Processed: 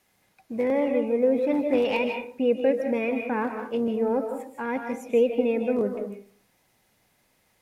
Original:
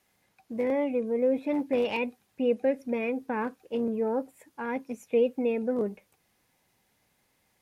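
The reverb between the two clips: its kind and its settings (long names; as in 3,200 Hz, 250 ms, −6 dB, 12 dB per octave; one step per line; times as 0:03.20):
comb and all-pass reverb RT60 0.5 s, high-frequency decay 0.5×, pre-delay 115 ms, DRR 4.5 dB
level +3 dB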